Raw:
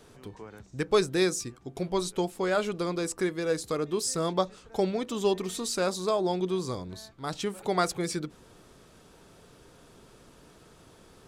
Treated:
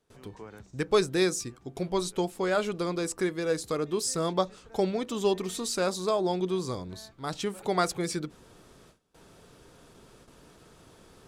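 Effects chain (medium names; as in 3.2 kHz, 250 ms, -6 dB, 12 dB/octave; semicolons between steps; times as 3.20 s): gate with hold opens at -45 dBFS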